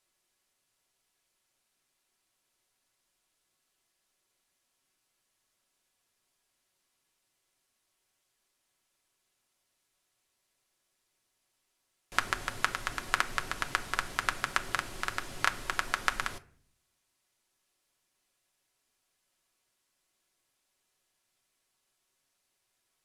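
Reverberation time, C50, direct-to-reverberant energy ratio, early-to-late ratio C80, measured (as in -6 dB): 0.55 s, 18.0 dB, 5.5 dB, 21.5 dB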